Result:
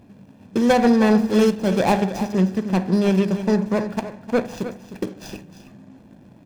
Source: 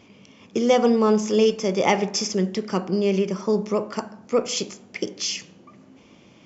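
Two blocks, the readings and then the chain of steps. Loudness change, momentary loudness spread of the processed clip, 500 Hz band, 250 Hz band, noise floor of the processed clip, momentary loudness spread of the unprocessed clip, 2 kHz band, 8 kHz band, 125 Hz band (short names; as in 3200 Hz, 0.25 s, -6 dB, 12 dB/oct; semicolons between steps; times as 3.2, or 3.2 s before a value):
+3.0 dB, 15 LU, -0.5 dB, +5.5 dB, -49 dBFS, 13 LU, +3.0 dB, n/a, +6.5 dB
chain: median filter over 41 samples; comb 1.2 ms, depth 46%; on a send: echo 0.309 s -12 dB; on the sum: gain +5 dB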